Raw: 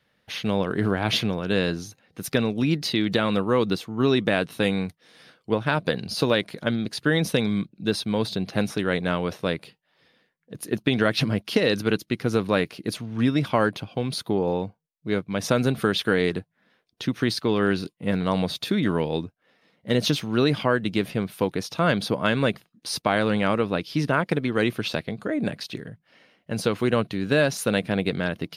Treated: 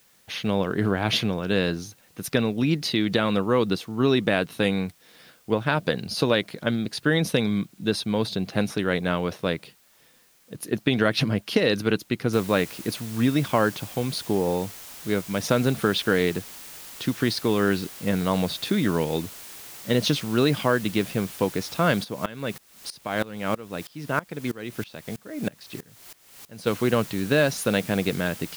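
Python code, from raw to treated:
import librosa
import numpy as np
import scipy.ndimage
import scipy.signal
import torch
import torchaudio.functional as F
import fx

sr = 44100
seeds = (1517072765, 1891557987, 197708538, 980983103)

y = fx.noise_floor_step(x, sr, seeds[0], at_s=12.33, before_db=-60, after_db=-42, tilt_db=0.0)
y = fx.tremolo_decay(y, sr, direction='swelling', hz=3.1, depth_db=21, at=(22.03, 26.66), fade=0.02)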